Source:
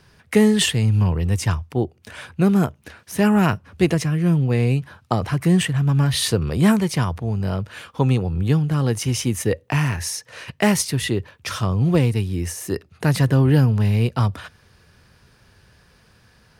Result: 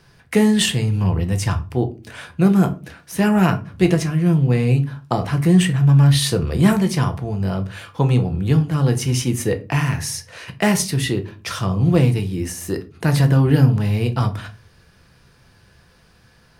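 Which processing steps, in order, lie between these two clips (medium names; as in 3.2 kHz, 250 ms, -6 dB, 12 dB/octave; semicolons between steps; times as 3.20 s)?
simulated room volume 170 m³, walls furnished, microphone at 0.75 m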